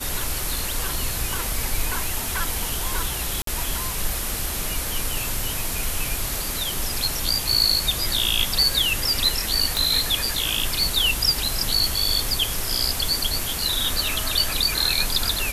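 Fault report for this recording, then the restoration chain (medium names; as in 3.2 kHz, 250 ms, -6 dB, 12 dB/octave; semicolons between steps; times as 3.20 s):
3.42–3.47 s: dropout 53 ms
9.77 s: pop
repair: de-click; interpolate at 3.42 s, 53 ms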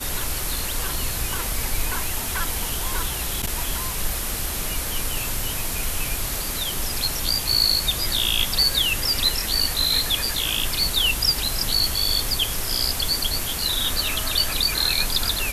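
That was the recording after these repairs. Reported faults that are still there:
nothing left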